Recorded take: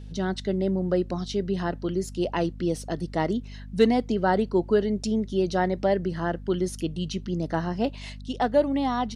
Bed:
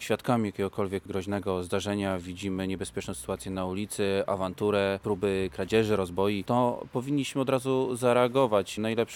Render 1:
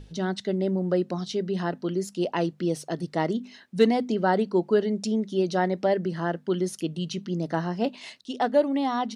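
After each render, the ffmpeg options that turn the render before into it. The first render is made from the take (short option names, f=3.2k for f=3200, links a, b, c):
-af "bandreject=f=50:t=h:w=6,bandreject=f=100:t=h:w=6,bandreject=f=150:t=h:w=6,bandreject=f=200:t=h:w=6,bandreject=f=250:t=h:w=6"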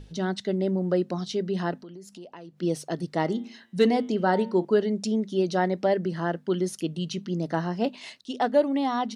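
-filter_complex "[0:a]asplit=3[a][b][c];[a]afade=t=out:st=1.81:d=0.02[d];[b]acompressor=threshold=-43dB:ratio=4:attack=3.2:release=140:knee=1:detection=peak,afade=t=in:st=1.81:d=0.02,afade=t=out:st=2.61:d=0.02[e];[c]afade=t=in:st=2.61:d=0.02[f];[d][e][f]amix=inputs=3:normalize=0,asettb=1/sr,asplit=3[g][h][i];[g]atrim=end=3.234[j];[h]atrim=start=3.23:end=4.65,asetpts=PTS-STARTPTS,afade=t=in:d=0.004:c=qsin,afade=t=out:st=1.416:d=0.004:c=qsin,bandreject=f=114.3:t=h:w=4,bandreject=f=228.6:t=h:w=4,bandreject=f=342.9:t=h:w=4,bandreject=f=457.2:t=h:w=4,bandreject=f=571.5:t=h:w=4,bandreject=f=685.8:t=h:w=4,bandreject=f=800.1:t=h:w=4,bandreject=f=914.4:t=h:w=4,bandreject=f=1.0287k:t=h:w=4,bandreject=f=1.143k:t=h:w=4,bandreject=f=1.2573k:t=h:w=4,bandreject=f=1.3716k:t=h:w=4,bandreject=f=1.4859k:t=h:w=4,bandreject=f=1.6002k:t=h:w=4,bandreject=f=1.7145k:t=h:w=4,bandreject=f=1.8288k:t=h:w=4,bandreject=f=1.9431k:t=h:w=4,bandreject=f=2.0574k:t=h:w=4,bandreject=f=2.1717k:t=h:w=4,bandreject=f=2.286k:t=h:w=4,bandreject=f=2.4003k:t=h:w=4,bandreject=f=2.5146k:t=h:w=4,bandreject=f=2.6289k:t=h:w=4,bandreject=f=2.7432k:t=h:w=4,bandreject=f=2.8575k:t=h:w=4,bandreject=f=2.9718k:t=h:w=4,bandreject=f=3.0861k:t=h:w=4,bandreject=f=3.2004k:t=h:w=4,bandreject=f=3.3147k:t=h:w=4,bandreject=f=3.429k:t=h:w=4,bandreject=f=3.5433k:t=h:w=4,bandreject=f=3.6576k:t=h:w=4,bandreject=f=3.7719k:t=h:w=4,bandreject=f=3.8862k:t=h:w=4[k];[i]atrim=start=4.646[l];[j][k]acrossfade=d=0.004:c1=hsin:c2=qsin[m];[m][l]acrossfade=d=0.004:c1=qsin:c2=hsin"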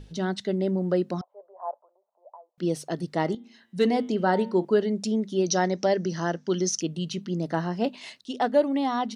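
-filter_complex "[0:a]asettb=1/sr,asplit=3[a][b][c];[a]atrim=end=1.214[d];[b]atrim=start=1.21:end=2.58,asetpts=PTS-STARTPTS,afade=t=in:d=0.004:c=qsin,afade=t=out:st=1.366:d=0.004:c=qsin,asuperpass=centerf=770:order=8:qfactor=1.5[e];[c]atrim=start=2.576[f];[d][e]acrossfade=d=0.004:c1=hsin:c2=qsin[g];[g][f]acrossfade=d=0.004:c1=qsin:c2=hsin,asettb=1/sr,asplit=3[h][i][j];[h]atrim=end=5.464[k];[i]atrim=start=5.46:end=6.82,asetpts=PTS-STARTPTS,afade=t=in:d=0.004:c=qsin,afade=t=out:st=1.356:d=0.004:c=qsin,lowpass=f=5.9k:t=q:w=10[l];[j]atrim=start=6.816[m];[k][l]acrossfade=d=0.004:c1=hsin:c2=qsin[n];[n][m]acrossfade=d=0.004:c1=qsin:c2=hsin,asplit=2[o][p];[o]atrim=end=3.35,asetpts=PTS-STARTPTS,afade=t=out:st=3.346:d=0.004:c=hsin:silence=0.199526[q];[p]atrim=start=3.35,asetpts=PTS-STARTPTS,afade=t=in:d=0.65:silence=0.199526[r];[q][r]concat=n=2:v=0:a=1"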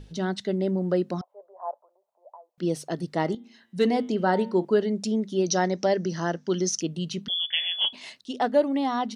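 -filter_complex "[0:a]asettb=1/sr,asplit=3[a][b][c];[a]atrim=end=7.284[d];[b]atrim=start=7.28:end=7.93,asetpts=PTS-STARTPTS,afade=t=in:d=0.004:c=qsin,afade=t=out:st=0.646:d=0.004:c=qsin,lowpass=f=3.1k:t=q:w=0.5098,lowpass=f=3.1k:t=q:w=0.6013,lowpass=f=3.1k:t=q:w=0.9,lowpass=f=3.1k:t=q:w=2.563,afreqshift=-3600[e];[c]atrim=start=7.926[f];[d][e]acrossfade=d=0.004:c1=hsin:c2=qsin[g];[g][f]acrossfade=d=0.004:c1=qsin:c2=hsin"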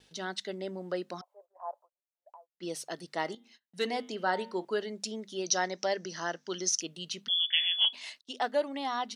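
-af "agate=range=-30dB:threshold=-49dB:ratio=16:detection=peak,highpass=f=1.3k:p=1"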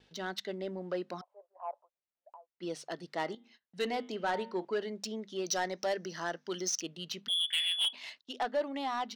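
-af "asoftclip=type=tanh:threshold=-24dB,adynamicsmooth=sensitivity=6.5:basefreq=4.4k"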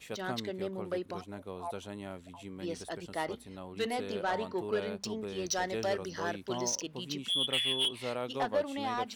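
-filter_complex "[1:a]volume=-13.5dB[a];[0:a][a]amix=inputs=2:normalize=0"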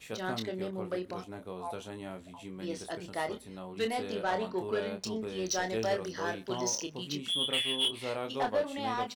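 -filter_complex "[0:a]asplit=2[a][b];[b]adelay=27,volume=-6.5dB[c];[a][c]amix=inputs=2:normalize=0,asplit=2[d][e];[e]adelay=122.4,volume=-27dB,highshelf=f=4k:g=-2.76[f];[d][f]amix=inputs=2:normalize=0"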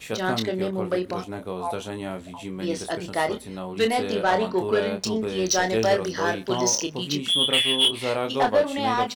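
-af "volume=10dB"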